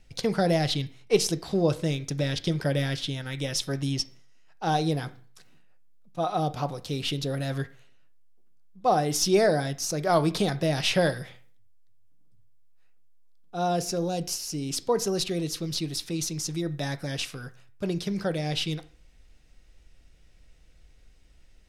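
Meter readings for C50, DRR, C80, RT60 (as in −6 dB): 17.0 dB, 10.0 dB, 21.5 dB, 0.45 s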